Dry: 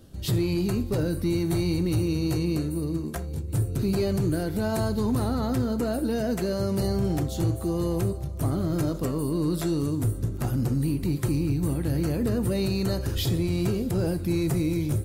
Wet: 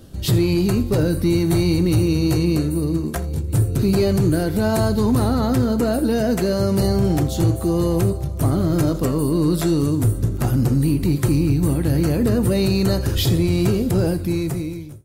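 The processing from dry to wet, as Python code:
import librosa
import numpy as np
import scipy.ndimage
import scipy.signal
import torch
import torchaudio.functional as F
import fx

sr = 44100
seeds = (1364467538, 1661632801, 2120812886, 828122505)

y = fx.fade_out_tail(x, sr, length_s=1.09)
y = y + 10.0 ** (-21.5 / 20.0) * np.pad(y, (int(83 * sr / 1000.0), 0))[:len(y)]
y = y * 10.0 ** (7.5 / 20.0)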